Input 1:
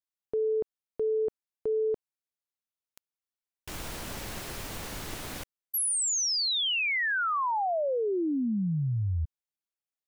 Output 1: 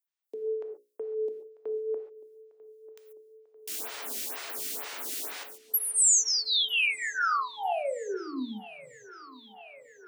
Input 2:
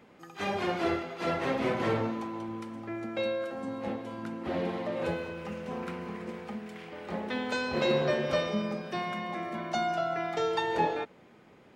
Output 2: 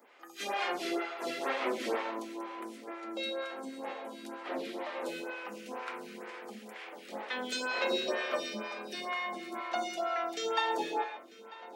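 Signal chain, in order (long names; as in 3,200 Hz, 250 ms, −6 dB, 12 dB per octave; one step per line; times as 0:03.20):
Butterworth high-pass 230 Hz 36 dB per octave
spectral tilt +2.5 dB per octave
mains-hum notches 60/120/180/240/300/360/420/480/540/600 Hz
feedback echo with a low-pass in the loop 944 ms, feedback 77%, low-pass 4,700 Hz, level −19 dB
reverb whose tail is shaped and stops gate 160 ms flat, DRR 5 dB
phaser with staggered stages 2.1 Hz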